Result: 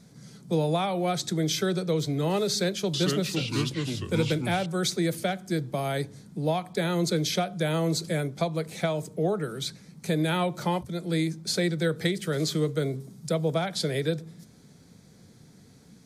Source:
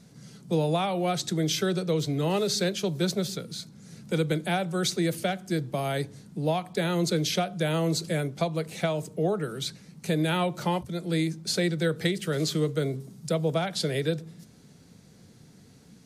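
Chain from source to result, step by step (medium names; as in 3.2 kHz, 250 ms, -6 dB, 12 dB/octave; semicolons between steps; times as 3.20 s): band-stop 2.8 kHz, Q 9.7; 2.51–4.66 s: ever faster or slower copies 425 ms, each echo -4 st, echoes 2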